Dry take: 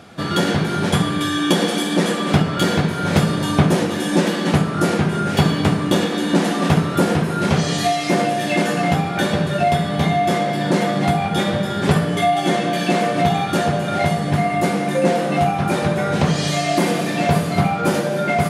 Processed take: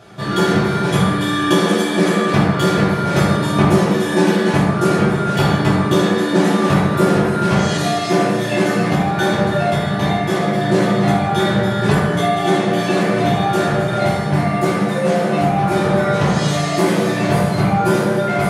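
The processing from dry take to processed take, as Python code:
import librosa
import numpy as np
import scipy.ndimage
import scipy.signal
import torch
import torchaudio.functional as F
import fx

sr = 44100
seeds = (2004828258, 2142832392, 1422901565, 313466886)

y = fx.peak_eq(x, sr, hz=330.0, db=-12.0, octaves=0.36, at=(14.79, 15.23))
y = fx.rev_fdn(y, sr, rt60_s=1.2, lf_ratio=0.8, hf_ratio=0.45, size_ms=47.0, drr_db=-7.5)
y = y * 10.0 ** (-5.5 / 20.0)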